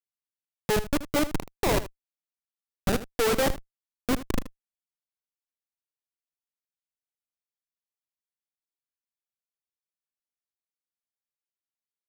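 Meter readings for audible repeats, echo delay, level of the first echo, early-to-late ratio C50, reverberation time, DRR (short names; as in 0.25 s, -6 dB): 1, 78 ms, -14.5 dB, none, none, none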